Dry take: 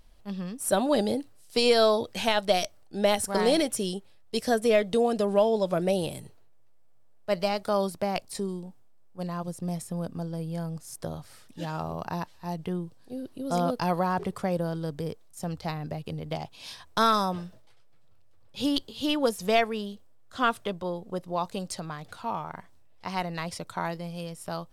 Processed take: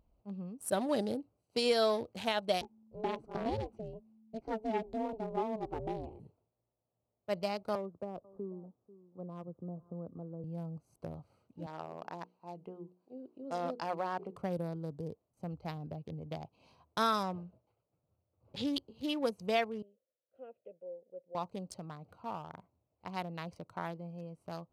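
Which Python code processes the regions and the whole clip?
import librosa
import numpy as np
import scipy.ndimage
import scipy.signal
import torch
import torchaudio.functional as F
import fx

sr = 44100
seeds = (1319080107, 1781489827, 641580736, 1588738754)

y = fx.chain(x, sr, fx.spacing_loss(db_at_10k=22),
    fx.ring_mod(carrier_hz=220.0), at=(2.61, 6.2))
y = fx.chain(y, sr, fx.cheby_ripple(hz=1700.0, ripple_db=6),
    fx.echo_single(ms=491, db=-22.5),
    fx.band_squash(depth_pct=40), at=(7.75, 10.44))
y = fx.chain(y, sr, fx.bandpass_edges(low_hz=280.0, high_hz=6900.0),
    fx.hum_notches(base_hz=60, count=8), at=(11.66, 14.36))
y = fx.chain(y, sr, fx.lowpass(hz=5900.0, slope=12),
    fx.pre_swell(db_per_s=96.0), at=(17.23, 18.67))
y = fx.chain(y, sr, fx.vowel_filter(vowel='e'),
    fx.air_absorb(metres=250.0), at=(19.82, 21.35))
y = fx.wiener(y, sr, points=25)
y = scipy.signal.sosfilt(scipy.signal.butter(2, 49.0, 'highpass', fs=sr, output='sos'), y)
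y = y * 10.0 ** (-7.5 / 20.0)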